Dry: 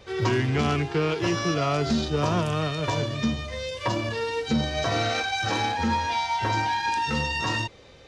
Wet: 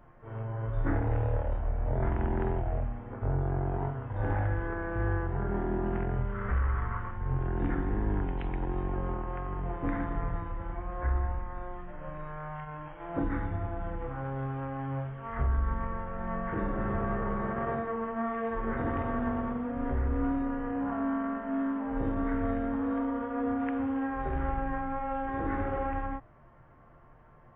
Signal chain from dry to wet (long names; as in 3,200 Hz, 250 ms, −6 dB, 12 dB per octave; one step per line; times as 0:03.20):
parametric band 570 Hz −9 dB 0.38 octaves
change of speed 0.293×
level −4.5 dB